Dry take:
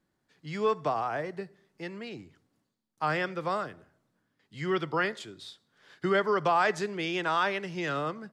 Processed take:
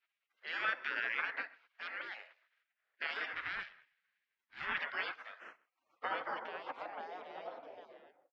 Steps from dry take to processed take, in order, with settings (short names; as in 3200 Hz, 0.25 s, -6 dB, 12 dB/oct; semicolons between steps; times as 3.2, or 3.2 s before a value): ending faded out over 0.95 s; spectral gate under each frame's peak -25 dB weak; bell 980 Hz -10 dB 1.3 oct; limiter -39 dBFS, peak gain reduction 9.5 dB; BPF 480–4500 Hz; 3.33–4.79 ring modulator 320 Hz; on a send: echo 0.129 s -23.5 dB; on the sum: low-pass sweep 1700 Hz -> 630 Hz, 5.01–7.71; gain +17 dB